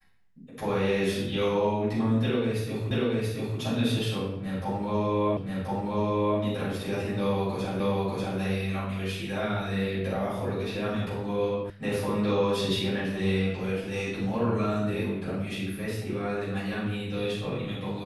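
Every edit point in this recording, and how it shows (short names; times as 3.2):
2.91 repeat of the last 0.68 s
5.37 repeat of the last 1.03 s
7.8 repeat of the last 0.59 s
11.7 sound cut off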